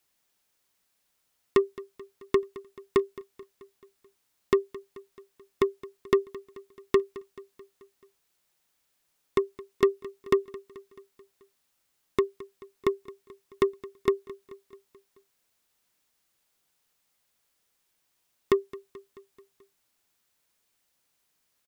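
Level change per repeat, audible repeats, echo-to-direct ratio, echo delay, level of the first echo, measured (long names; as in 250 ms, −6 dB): −4.5 dB, 4, −17.0 dB, 217 ms, −19.0 dB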